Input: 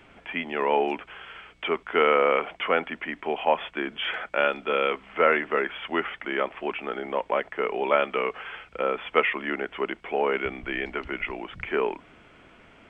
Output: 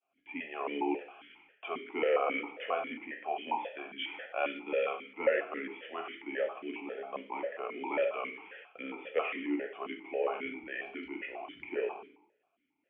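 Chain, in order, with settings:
downward expander −40 dBFS
dense smooth reverb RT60 0.66 s, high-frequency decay 0.95×, DRR 2 dB
formant filter that steps through the vowels 7.4 Hz

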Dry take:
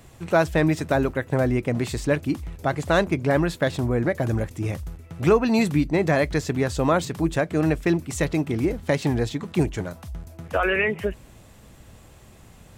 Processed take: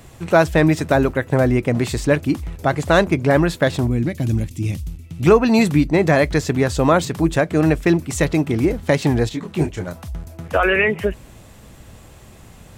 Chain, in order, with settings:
0:03.87–0:05.26: flat-topped bell 870 Hz −13.5 dB 2.5 octaves
0:09.29–0:09.88: micro pitch shift up and down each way 38 cents
level +5.5 dB

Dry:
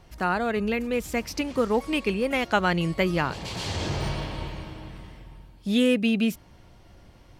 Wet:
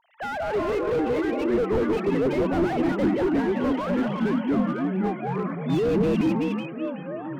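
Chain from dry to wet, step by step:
three sine waves on the formant tracks
0:02.05–0:03.67: high-shelf EQ 2,600 Hz −7 dB
delay that swaps between a low-pass and a high-pass 187 ms, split 1,000 Hz, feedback 53%, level −2 dB
delay with pitch and tempo change per echo 262 ms, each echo −5 semitones, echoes 3
slew-rate limiting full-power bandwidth 42 Hz

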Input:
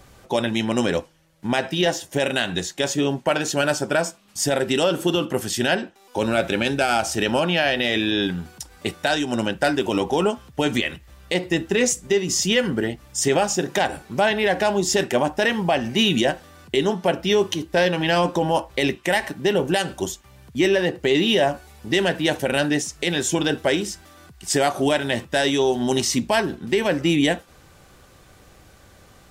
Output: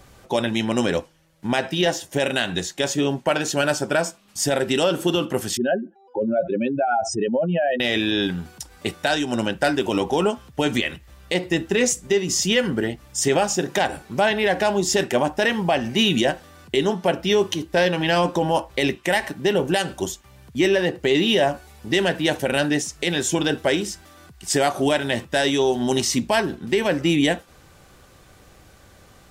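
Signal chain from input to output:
0:05.57–0:07.80: expanding power law on the bin magnitudes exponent 2.9

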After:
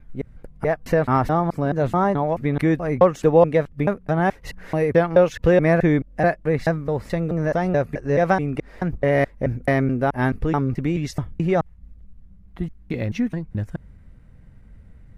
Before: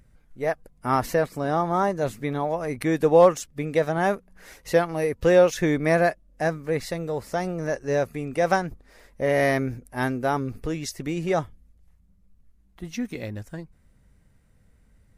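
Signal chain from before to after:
slices reordered back to front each 215 ms, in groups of 2
bass and treble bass +6 dB, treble −13 dB
in parallel at +2 dB: downward compressor, threshold −30 dBFS, peak gain reduction 18 dB

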